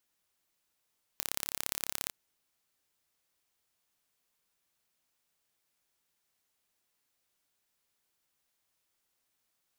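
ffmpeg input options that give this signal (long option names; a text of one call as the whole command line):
ffmpeg -f lavfi -i "aevalsrc='0.596*eq(mod(n,1278),0)*(0.5+0.5*eq(mod(n,2556),0))':duration=0.92:sample_rate=44100" out.wav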